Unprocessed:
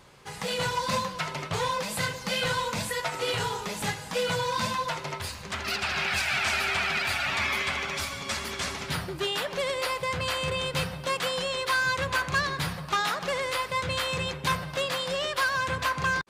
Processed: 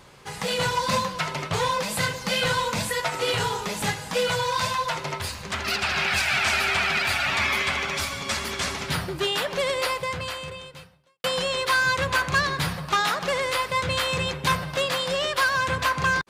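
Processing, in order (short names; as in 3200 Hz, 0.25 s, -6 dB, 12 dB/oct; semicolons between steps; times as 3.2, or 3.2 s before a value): 4.28–4.94 bell 240 Hz -13.5 dB 0.76 oct; 9.85–11.24 fade out quadratic; gain +4 dB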